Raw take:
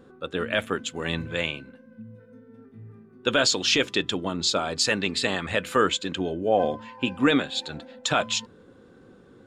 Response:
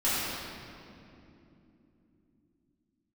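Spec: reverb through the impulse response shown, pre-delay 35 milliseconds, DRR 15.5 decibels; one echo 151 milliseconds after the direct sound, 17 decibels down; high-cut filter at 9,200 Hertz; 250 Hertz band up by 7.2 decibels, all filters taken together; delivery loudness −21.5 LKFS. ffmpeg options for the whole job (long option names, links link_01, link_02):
-filter_complex "[0:a]lowpass=9200,equalizer=frequency=250:width_type=o:gain=8.5,aecho=1:1:151:0.141,asplit=2[link_01][link_02];[1:a]atrim=start_sample=2205,adelay=35[link_03];[link_02][link_03]afir=irnorm=-1:irlink=0,volume=-28dB[link_04];[link_01][link_04]amix=inputs=2:normalize=0,volume=1dB"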